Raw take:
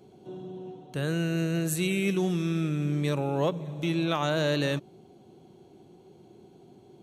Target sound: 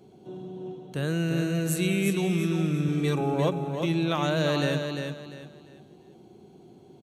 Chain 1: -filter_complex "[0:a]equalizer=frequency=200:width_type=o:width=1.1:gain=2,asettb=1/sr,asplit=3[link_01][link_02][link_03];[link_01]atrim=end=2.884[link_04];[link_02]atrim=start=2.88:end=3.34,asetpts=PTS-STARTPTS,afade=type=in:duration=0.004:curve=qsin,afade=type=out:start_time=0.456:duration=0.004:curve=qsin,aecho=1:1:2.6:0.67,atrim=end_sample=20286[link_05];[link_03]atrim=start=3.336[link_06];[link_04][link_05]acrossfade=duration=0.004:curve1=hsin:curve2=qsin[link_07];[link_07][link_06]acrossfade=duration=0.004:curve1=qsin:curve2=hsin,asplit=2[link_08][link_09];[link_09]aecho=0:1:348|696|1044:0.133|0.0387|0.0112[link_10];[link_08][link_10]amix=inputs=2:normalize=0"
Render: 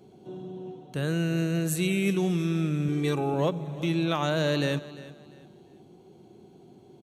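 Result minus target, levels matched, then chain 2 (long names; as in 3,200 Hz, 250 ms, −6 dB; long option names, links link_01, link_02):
echo-to-direct −11.5 dB
-filter_complex "[0:a]equalizer=frequency=200:width_type=o:width=1.1:gain=2,asettb=1/sr,asplit=3[link_01][link_02][link_03];[link_01]atrim=end=2.884[link_04];[link_02]atrim=start=2.88:end=3.34,asetpts=PTS-STARTPTS,afade=type=in:duration=0.004:curve=qsin,afade=type=out:start_time=0.456:duration=0.004:curve=qsin,aecho=1:1:2.6:0.67,atrim=end_sample=20286[link_05];[link_03]atrim=start=3.336[link_06];[link_04][link_05]acrossfade=duration=0.004:curve1=hsin:curve2=qsin[link_07];[link_07][link_06]acrossfade=duration=0.004:curve1=qsin:curve2=hsin,asplit=2[link_08][link_09];[link_09]aecho=0:1:348|696|1044|1392:0.501|0.145|0.0421|0.0122[link_10];[link_08][link_10]amix=inputs=2:normalize=0"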